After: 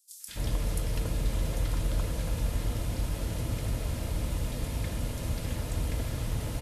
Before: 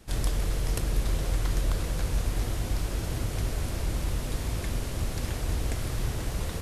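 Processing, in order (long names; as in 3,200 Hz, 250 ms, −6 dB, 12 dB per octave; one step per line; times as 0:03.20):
notch comb filter 380 Hz
three-band delay without the direct sound highs, mids, lows 200/280 ms, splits 1,500/5,700 Hz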